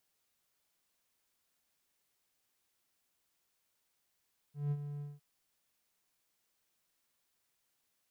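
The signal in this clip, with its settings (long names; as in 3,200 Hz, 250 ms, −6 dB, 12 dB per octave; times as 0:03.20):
note with an ADSR envelope triangle 145 Hz, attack 173 ms, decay 50 ms, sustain −9.5 dB, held 0.47 s, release 188 ms −27.5 dBFS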